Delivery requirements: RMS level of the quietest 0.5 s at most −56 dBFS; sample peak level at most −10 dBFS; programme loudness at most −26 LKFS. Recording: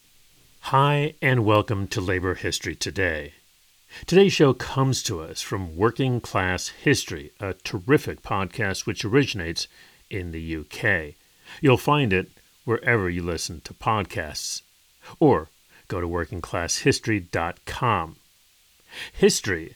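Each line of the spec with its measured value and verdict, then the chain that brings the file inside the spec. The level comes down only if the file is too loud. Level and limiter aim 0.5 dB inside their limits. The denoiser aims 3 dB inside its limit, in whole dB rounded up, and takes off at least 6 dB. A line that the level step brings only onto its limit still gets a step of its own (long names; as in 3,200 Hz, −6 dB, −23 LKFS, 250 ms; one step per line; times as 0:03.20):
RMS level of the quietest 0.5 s −59 dBFS: in spec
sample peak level −3.5 dBFS: out of spec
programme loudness −24.0 LKFS: out of spec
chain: level −2.5 dB
brickwall limiter −10.5 dBFS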